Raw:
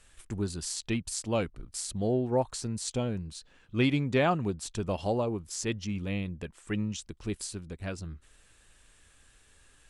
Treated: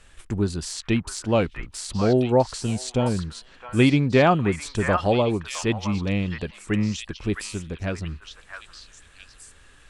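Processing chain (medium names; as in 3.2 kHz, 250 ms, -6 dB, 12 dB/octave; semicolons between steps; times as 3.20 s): de-esser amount 60%; treble shelf 6.3 kHz -10.5 dB; repeats whose band climbs or falls 662 ms, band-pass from 1.4 kHz, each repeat 1.4 oct, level -1 dB; trim +8.5 dB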